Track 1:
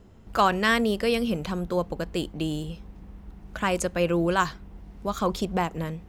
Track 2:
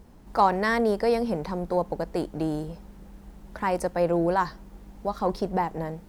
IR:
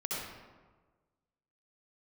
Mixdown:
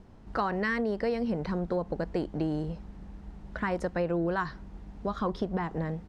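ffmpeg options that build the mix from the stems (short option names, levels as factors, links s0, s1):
-filter_complex "[0:a]lowpass=2600,volume=0.562[s0];[1:a]adelay=1,volume=0.708[s1];[s0][s1]amix=inputs=2:normalize=0,lowpass=5700,acompressor=threshold=0.0501:ratio=5"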